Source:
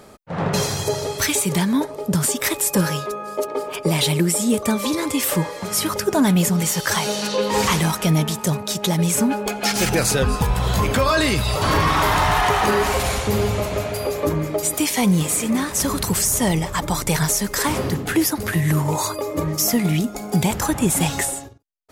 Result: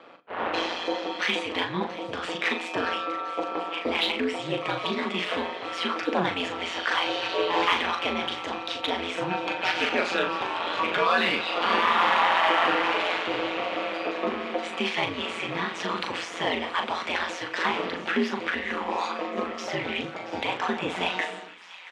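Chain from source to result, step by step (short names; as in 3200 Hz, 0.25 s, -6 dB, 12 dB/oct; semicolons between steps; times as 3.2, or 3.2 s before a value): elliptic band-pass 300–3100 Hz, stop band 70 dB; tilt +2.5 dB/oct; in parallel at -7.5 dB: soft clip -23 dBFS, distortion -9 dB; on the sum: ring modulator 87 Hz; doubler 39 ms -6.5 dB; thin delay 0.678 s, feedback 84%, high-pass 1500 Hz, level -17 dB; on a send at -12.5 dB: reverb RT60 0.70 s, pre-delay 3 ms; on the sum: gain -2.5 dB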